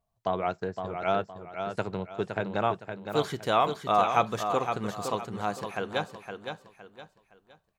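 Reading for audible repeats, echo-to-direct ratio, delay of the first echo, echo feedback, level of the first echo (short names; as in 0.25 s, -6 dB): 3, -6.5 dB, 0.514 s, 32%, -7.0 dB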